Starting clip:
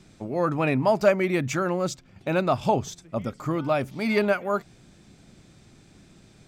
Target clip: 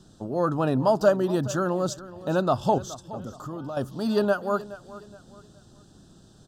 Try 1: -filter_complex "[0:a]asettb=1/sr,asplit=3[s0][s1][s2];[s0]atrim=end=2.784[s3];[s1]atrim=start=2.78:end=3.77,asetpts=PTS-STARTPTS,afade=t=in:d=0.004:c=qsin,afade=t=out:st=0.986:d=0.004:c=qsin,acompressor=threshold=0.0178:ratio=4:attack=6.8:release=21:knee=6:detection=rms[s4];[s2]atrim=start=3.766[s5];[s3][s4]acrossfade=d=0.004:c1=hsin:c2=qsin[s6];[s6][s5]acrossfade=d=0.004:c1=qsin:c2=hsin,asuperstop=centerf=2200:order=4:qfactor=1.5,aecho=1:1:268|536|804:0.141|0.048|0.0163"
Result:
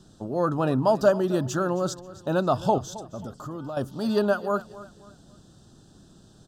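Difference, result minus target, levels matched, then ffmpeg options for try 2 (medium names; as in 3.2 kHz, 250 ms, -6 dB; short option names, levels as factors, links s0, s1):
echo 153 ms early
-filter_complex "[0:a]asettb=1/sr,asplit=3[s0][s1][s2];[s0]atrim=end=2.784[s3];[s1]atrim=start=2.78:end=3.77,asetpts=PTS-STARTPTS,afade=t=in:d=0.004:c=qsin,afade=t=out:st=0.986:d=0.004:c=qsin,acompressor=threshold=0.0178:ratio=4:attack=6.8:release=21:knee=6:detection=rms[s4];[s2]atrim=start=3.766[s5];[s3][s4]acrossfade=d=0.004:c1=hsin:c2=qsin[s6];[s6][s5]acrossfade=d=0.004:c1=qsin:c2=hsin,asuperstop=centerf=2200:order=4:qfactor=1.5,aecho=1:1:421|842|1263:0.141|0.048|0.0163"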